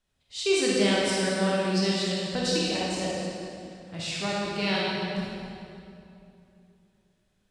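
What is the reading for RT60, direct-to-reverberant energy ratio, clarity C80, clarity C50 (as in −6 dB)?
2.7 s, −6.0 dB, −1.5 dB, −4.0 dB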